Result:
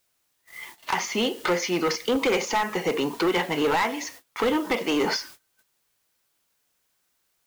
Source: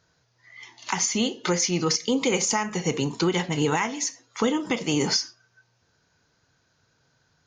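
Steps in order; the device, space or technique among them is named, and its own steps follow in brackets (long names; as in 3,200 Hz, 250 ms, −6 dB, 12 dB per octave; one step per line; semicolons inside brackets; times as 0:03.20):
aircraft radio (band-pass filter 350–2,700 Hz; hard clipping −24.5 dBFS, distortion −10 dB; white noise bed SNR 21 dB; noise gate −49 dBFS, range −24 dB)
level +6 dB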